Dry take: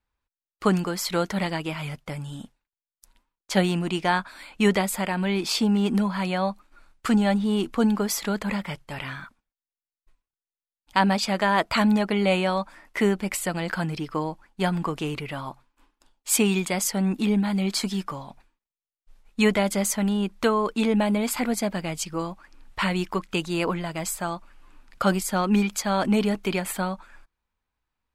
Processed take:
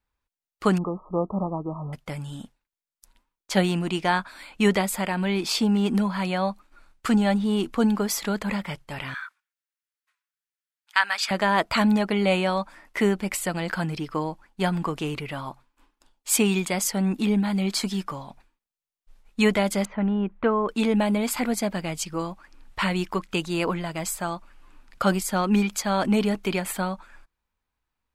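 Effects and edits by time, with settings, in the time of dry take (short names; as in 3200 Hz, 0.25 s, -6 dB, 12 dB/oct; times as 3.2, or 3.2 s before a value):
0.78–1.93 brick-wall FIR low-pass 1300 Hz
9.14–11.31 resonant high-pass 1500 Hz, resonance Q 2
19.85–20.69 Bessel low-pass 1700 Hz, order 6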